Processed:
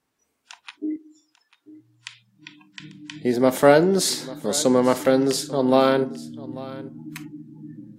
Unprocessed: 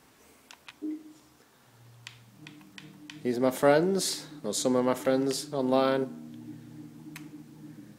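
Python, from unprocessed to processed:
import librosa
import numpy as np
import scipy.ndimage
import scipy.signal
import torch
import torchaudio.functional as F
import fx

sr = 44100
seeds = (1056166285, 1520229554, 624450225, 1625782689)

y = fx.noise_reduce_blind(x, sr, reduce_db=24)
y = fx.highpass(y, sr, hz=600.0, slope=6, at=(0.96, 2.8))
y = y + 10.0 ** (-18.5 / 20.0) * np.pad(y, (int(843 * sr / 1000.0), 0))[:len(y)]
y = F.gain(torch.from_numpy(y), 7.5).numpy()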